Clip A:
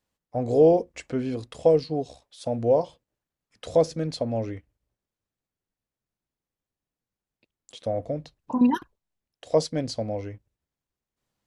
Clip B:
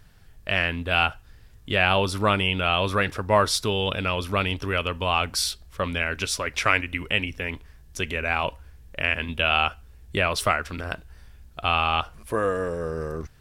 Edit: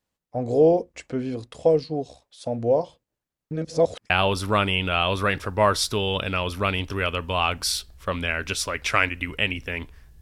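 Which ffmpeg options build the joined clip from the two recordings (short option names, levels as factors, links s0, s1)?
-filter_complex "[0:a]apad=whole_dur=10.21,atrim=end=10.21,asplit=2[s0][s1];[s0]atrim=end=3.512[s2];[s1]atrim=start=3.508:end=4.102,asetpts=PTS-STARTPTS,areverse[s3];[1:a]atrim=start=1.818:end=7.93[s4];[s2][s3]acrossfade=d=0.004:c1=hsin:c2=hsin[s5];[s5][s4]acrossfade=d=0.004:c1=hsin:c2=hsin"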